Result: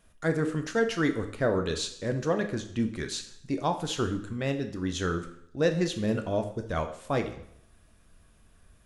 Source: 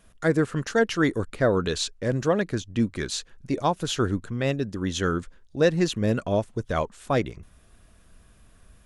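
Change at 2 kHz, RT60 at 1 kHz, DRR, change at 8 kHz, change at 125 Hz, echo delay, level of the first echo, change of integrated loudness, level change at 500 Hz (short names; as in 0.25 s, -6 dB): -4.0 dB, 0.70 s, 6.0 dB, -4.0 dB, -4.5 dB, none, none, -4.0 dB, -4.0 dB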